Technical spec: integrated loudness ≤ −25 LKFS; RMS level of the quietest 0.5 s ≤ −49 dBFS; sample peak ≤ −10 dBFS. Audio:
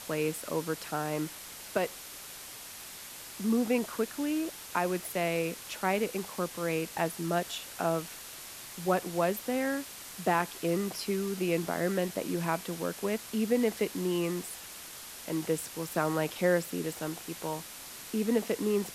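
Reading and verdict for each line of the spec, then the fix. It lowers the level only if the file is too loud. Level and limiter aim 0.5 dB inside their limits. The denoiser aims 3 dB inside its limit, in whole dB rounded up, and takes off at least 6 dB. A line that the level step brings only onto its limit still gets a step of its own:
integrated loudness −32.5 LKFS: in spec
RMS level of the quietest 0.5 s −45 dBFS: out of spec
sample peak −14.0 dBFS: in spec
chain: broadband denoise 7 dB, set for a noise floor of −45 dBFS

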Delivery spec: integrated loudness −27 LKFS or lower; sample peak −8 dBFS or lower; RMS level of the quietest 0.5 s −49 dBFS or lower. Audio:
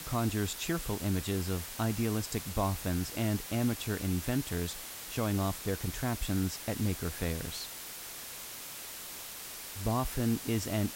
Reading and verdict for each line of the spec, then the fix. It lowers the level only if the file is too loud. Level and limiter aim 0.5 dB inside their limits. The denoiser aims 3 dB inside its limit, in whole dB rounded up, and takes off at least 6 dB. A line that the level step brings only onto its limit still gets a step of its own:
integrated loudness −34.0 LKFS: in spec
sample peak −18.5 dBFS: in spec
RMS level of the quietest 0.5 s −44 dBFS: out of spec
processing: broadband denoise 8 dB, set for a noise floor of −44 dBFS

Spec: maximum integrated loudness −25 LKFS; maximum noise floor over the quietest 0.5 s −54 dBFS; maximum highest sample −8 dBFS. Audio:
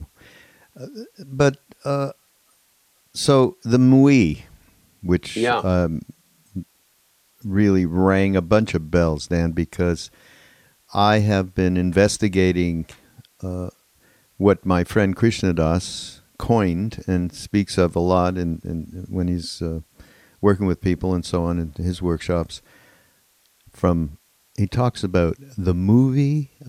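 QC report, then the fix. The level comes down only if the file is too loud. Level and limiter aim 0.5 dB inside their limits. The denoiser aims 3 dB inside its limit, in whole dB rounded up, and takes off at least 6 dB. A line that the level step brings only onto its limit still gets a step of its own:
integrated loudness −20.5 LKFS: out of spec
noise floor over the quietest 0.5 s −61 dBFS: in spec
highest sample −3.5 dBFS: out of spec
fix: level −5 dB

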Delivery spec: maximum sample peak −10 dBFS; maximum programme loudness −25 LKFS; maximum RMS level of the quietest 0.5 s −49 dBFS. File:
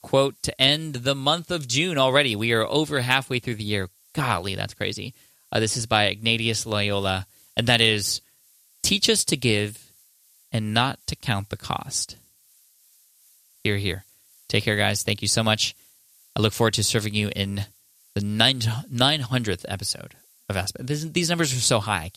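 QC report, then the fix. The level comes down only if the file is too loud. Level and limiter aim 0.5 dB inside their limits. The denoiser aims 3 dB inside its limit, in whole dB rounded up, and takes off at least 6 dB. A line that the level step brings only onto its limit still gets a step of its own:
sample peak −2.5 dBFS: out of spec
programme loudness −23.0 LKFS: out of spec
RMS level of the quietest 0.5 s −59 dBFS: in spec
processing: level −2.5 dB
brickwall limiter −10.5 dBFS

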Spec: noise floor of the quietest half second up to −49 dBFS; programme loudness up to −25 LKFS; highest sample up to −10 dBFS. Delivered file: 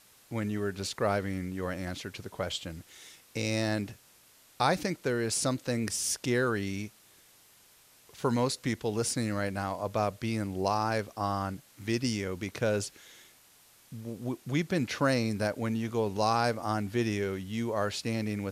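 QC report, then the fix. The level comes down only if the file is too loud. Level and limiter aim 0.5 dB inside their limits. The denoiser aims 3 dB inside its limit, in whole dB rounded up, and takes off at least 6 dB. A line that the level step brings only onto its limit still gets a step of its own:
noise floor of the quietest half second −60 dBFS: in spec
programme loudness −31.5 LKFS: in spec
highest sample −11.5 dBFS: in spec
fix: no processing needed

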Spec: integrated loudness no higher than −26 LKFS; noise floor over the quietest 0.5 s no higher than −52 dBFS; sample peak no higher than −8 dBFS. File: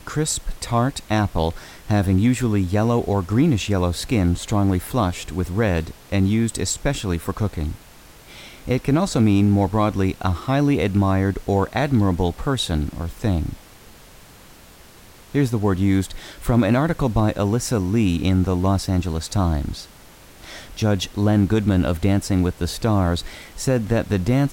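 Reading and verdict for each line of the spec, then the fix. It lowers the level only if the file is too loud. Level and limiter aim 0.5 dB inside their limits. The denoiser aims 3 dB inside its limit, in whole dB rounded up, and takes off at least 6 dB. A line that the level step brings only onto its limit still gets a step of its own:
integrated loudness −21.0 LKFS: out of spec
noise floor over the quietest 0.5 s −46 dBFS: out of spec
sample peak −6.5 dBFS: out of spec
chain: broadband denoise 6 dB, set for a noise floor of −46 dBFS
level −5.5 dB

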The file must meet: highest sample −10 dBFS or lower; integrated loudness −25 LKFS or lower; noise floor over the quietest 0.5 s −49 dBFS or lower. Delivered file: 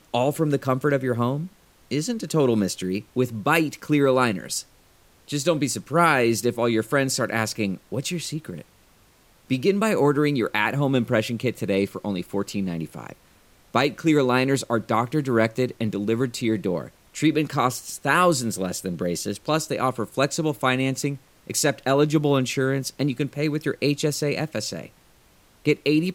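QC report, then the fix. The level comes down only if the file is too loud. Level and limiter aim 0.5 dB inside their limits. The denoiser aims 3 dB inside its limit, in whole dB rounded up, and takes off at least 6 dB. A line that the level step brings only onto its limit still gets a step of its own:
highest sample −5.0 dBFS: out of spec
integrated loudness −23.5 LKFS: out of spec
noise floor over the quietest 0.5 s −57 dBFS: in spec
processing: level −2 dB
brickwall limiter −10.5 dBFS

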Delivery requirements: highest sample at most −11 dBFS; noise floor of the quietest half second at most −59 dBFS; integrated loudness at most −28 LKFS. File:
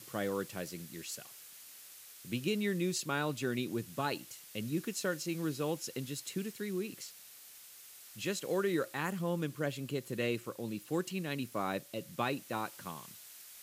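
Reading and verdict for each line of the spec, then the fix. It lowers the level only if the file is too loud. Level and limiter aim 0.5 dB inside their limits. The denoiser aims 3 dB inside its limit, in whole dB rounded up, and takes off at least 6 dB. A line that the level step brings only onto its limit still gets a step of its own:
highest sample −19.5 dBFS: in spec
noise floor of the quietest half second −54 dBFS: out of spec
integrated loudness −37.0 LKFS: in spec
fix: broadband denoise 8 dB, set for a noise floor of −54 dBFS

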